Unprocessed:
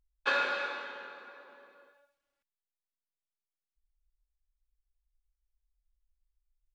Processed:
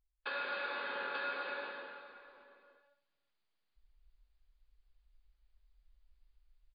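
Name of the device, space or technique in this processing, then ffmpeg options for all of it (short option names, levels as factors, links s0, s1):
low-bitrate web radio: -af "aecho=1:1:882:0.15,dynaudnorm=f=210:g=9:m=6.31,alimiter=limit=0.0668:level=0:latency=1:release=355,volume=0.596" -ar 11025 -c:a libmp3lame -b:a 32k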